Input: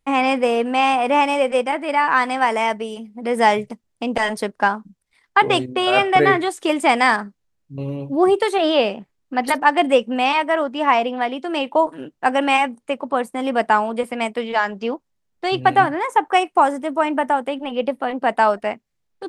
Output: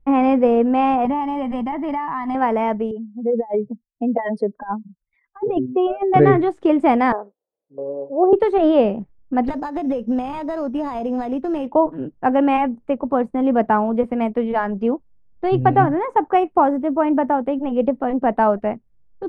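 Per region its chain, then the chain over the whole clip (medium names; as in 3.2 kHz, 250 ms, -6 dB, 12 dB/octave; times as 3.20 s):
1.05–2.35 s: comb 1 ms, depth 84% + compression 3:1, threshold -22 dBFS
2.91–6.14 s: spectral contrast enhancement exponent 2.2 + high-pass 470 Hz 6 dB/octave + compressor with a negative ratio -22 dBFS, ratio -0.5
7.12–8.33 s: ladder band-pass 550 Hz, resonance 60% + peaking EQ 750 Hz +12 dB 2.3 oct
9.48–11.67 s: compression 16:1, threshold -21 dBFS + sample-rate reducer 5.8 kHz
whole clip: low-pass 1.6 kHz 6 dB/octave; tilt EQ -4 dB/octave; trim -1 dB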